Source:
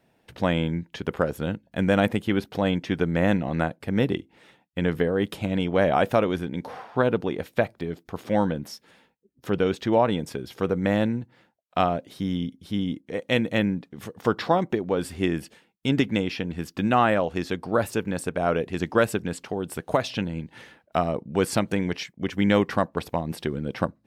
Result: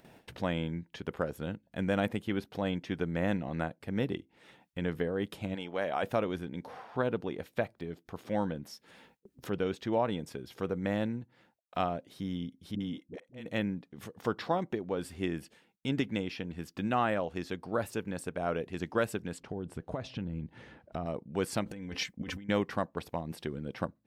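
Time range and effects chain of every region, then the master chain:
0:05.54–0:06.02: high-pass filter 230 Hz 6 dB per octave + low-shelf EQ 460 Hz −6 dB + steady tone 850 Hz −49 dBFS
0:12.75–0:13.46: de-essing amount 35% + volume swells 497 ms + all-pass dispersion highs, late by 55 ms, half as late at 410 Hz
0:19.40–0:21.06: low-pass filter 9,900 Hz + spectral tilt −2.5 dB per octave + downward compressor 3 to 1, threshold −24 dBFS
0:21.66–0:22.49: low-shelf EQ 120 Hz +9.5 dB + comb filter 3.9 ms, depth 45% + compressor whose output falls as the input rises −31 dBFS
whole clip: noise gate with hold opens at −56 dBFS; upward compression, threshold −31 dBFS; level −9 dB

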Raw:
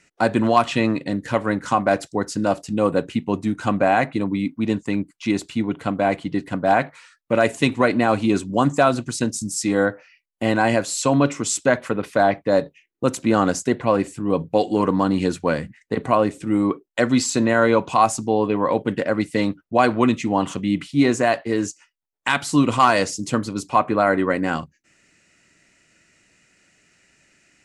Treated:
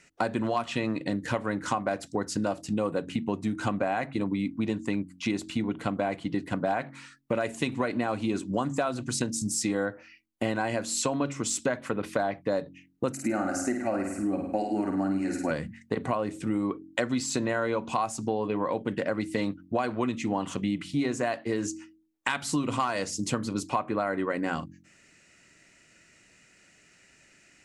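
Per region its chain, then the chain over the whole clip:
0:13.12–0:15.51: high-pass filter 42 Hz + phaser with its sweep stopped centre 690 Hz, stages 8 + flutter between parallel walls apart 8.9 metres, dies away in 0.57 s
whole clip: de-essing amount 40%; hum removal 45.68 Hz, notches 7; downward compressor 6 to 1, threshold −25 dBFS

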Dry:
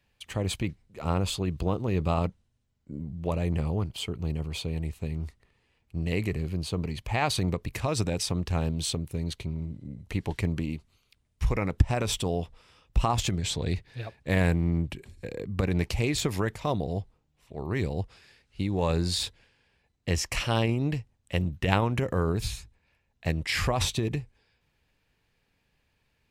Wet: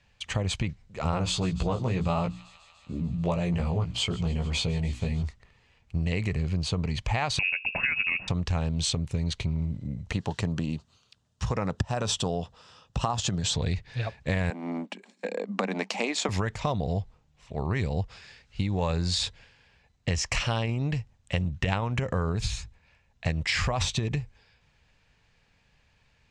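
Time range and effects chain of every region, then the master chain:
0:01.11–0:05.23: mains-hum notches 60/120/180/240/300 Hz + double-tracking delay 17 ms −2.5 dB + delay with a high-pass on its return 147 ms, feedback 78%, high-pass 2,400 Hz, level −19 dB
0:07.39–0:08.28: mains-hum notches 50/100/150/200/250/300 Hz + voice inversion scrambler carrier 2,700 Hz
0:10.12–0:13.54: high-pass filter 120 Hz + parametric band 2,200 Hz −13.5 dB 0.32 octaves
0:14.50–0:16.29: parametric band 810 Hz +4.5 dB 1 octave + transient designer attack +3 dB, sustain −6 dB + Chebyshev high-pass with heavy ripple 190 Hz, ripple 3 dB
whole clip: Chebyshev low-pass filter 7,200 Hz, order 3; parametric band 330 Hz −8 dB 0.91 octaves; downward compressor, threshold −32 dBFS; level +8 dB

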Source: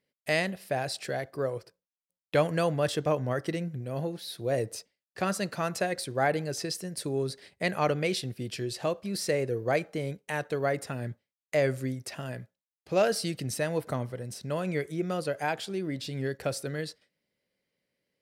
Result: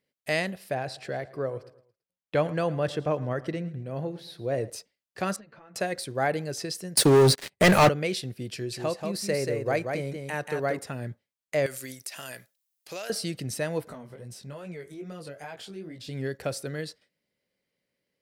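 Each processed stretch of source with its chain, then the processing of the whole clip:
0:00.74–0:04.70: low-pass filter 2,800 Hz 6 dB per octave + repeating echo 111 ms, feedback 44%, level −19 dB
0:05.36–0:05.76: low-pass filter 2,400 Hz + downward compressor 12 to 1, threshold −43 dBFS + string-ensemble chorus
0:06.97–0:07.89: high-pass filter 78 Hz 24 dB per octave + leveller curve on the samples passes 5
0:08.54–0:10.79: parametric band 3,300 Hz −4.5 dB 0.22 octaves + single-tap delay 184 ms −5 dB
0:11.66–0:13.10: spectral tilt +4.5 dB per octave + downward compressor, threshold −33 dBFS
0:13.88–0:16.09: downward compressor 2.5 to 1, threshold −36 dBFS + chorus effect 2.4 Hz, delay 17 ms, depth 4.8 ms
whole clip: no processing

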